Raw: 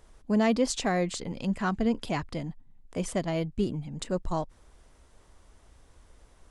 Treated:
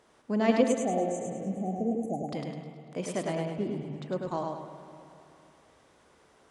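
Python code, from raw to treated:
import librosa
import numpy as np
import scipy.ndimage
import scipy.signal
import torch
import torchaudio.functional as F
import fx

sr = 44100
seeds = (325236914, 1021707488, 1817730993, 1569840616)

p1 = scipy.signal.sosfilt(scipy.signal.butter(2, 200.0, 'highpass', fs=sr, output='sos'), x)
p2 = fx.high_shelf(p1, sr, hz=6700.0, db=-9.5)
p3 = fx.level_steps(p2, sr, step_db=23)
p4 = p2 + F.gain(torch.from_numpy(p3), -1.0).numpy()
p5 = fx.brickwall_bandstop(p4, sr, low_hz=830.0, high_hz=6000.0, at=(0.62, 2.24))
p6 = fx.spacing_loss(p5, sr, db_at_10k=26, at=(3.35, 4.09))
p7 = p6 + fx.echo_feedback(p6, sr, ms=103, feedback_pct=40, wet_db=-3.5, dry=0)
p8 = fx.rev_spring(p7, sr, rt60_s=2.9, pass_ms=(48, 58), chirp_ms=55, drr_db=9.0)
p9 = fx.echo_warbled(p8, sr, ms=110, feedback_pct=77, rate_hz=2.8, cents=170, wet_db=-21)
y = F.gain(torch.from_numpy(p9), -3.0).numpy()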